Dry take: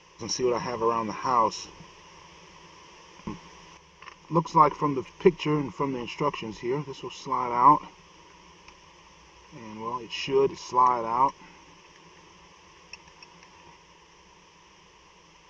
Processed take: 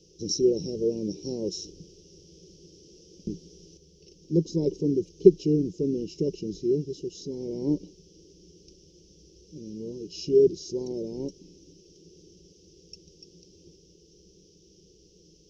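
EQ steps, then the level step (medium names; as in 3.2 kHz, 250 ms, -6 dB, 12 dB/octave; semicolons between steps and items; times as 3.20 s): elliptic band-stop 420–4300 Hz, stop band 70 dB; peaking EQ 340 Hz +3.5 dB 1.8 oct; +1.5 dB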